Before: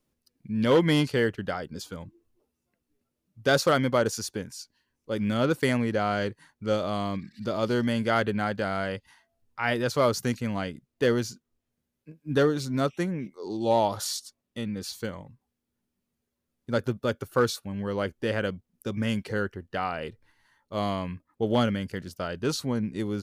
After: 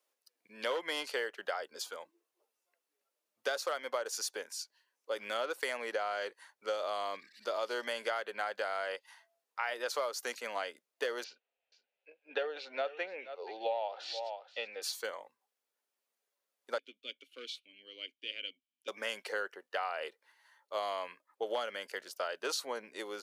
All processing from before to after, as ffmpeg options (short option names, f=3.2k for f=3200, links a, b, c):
-filter_complex "[0:a]asettb=1/sr,asplit=3[a][b][c];[a]atrim=end=11.244[d];[b]atrim=start=11.24:end=14.82,asetpts=PTS-STARTPTS,afade=t=in:d=0.004:c=qsin,afade=t=out:st=3.576:d=0.004:c=qsin,highpass=300,equalizer=f=330:t=q:w=4:g=-5,equalizer=f=510:t=q:w=4:g=5,equalizer=f=750:t=q:w=4:g=6,equalizer=f=1.1k:t=q:w=4:g=-10,equalizer=f=2.6k:t=q:w=4:g=9,lowpass=f=3.7k:w=0.5412,lowpass=f=3.7k:w=1.3066,aecho=1:1:479:0.119,atrim=end_sample=157878[e];[c]atrim=start=14.816[f];[d][e]acrossfade=d=0.004:c1=hsin:c2=qsin[g];[g][f]acrossfade=d=0.004:c1=qsin:c2=hsin,asettb=1/sr,asplit=3[h][i][j];[h]atrim=end=16.784[k];[i]atrim=start=16.78:end=18.88,asetpts=PTS-STARTPTS,afade=t=in:d=0.004:c=qsin,afade=t=out:st=2.096:d=0.004:c=qsin,asplit=3[l][m][n];[l]bandpass=f=270:t=q:w=8,volume=0dB[o];[m]bandpass=f=2.29k:t=q:w=8,volume=-6dB[p];[n]bandpass=f=3.01k:t=q:w=8,volume=-9dB[q];[o][p][q]amix=inputs=3:normalize=0,highshelf=f=2.2k:t=q:w=3:g=6.5[r];[j]atrim=start=18.876[s];[k][r]acrossfade=d=0.004:c1=hsin:c2=qsin[t];[t][s]acrossfade=d=0.004:c1=qsin:c2=hsin,highpass=f=510:w=0.5412,highpass=f=510:w=1.3066,acompressor=threshold=-31dB:ratio=12"